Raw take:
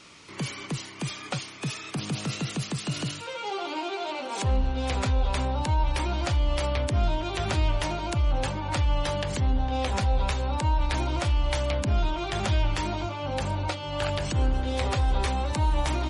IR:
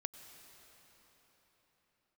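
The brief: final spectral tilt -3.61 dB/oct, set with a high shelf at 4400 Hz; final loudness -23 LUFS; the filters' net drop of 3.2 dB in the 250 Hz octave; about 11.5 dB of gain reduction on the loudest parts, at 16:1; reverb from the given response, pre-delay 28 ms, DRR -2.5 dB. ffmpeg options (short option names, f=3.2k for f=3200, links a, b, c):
-filter_complex "[0:a]equalizer=f=250:t=o:g=-4.5,highshelf=f=4.4k:g=8,acompressor=threshold=-31dB:ratio=16,asplit=2[a][b];[1:a]atrim=start_sample=2205,adelay=28[c];[b][c]afir=irnorm=-1:irlink=0,volume=5dB[d];[a][d]amix=inputs=2:normalize=0,volume=8dB"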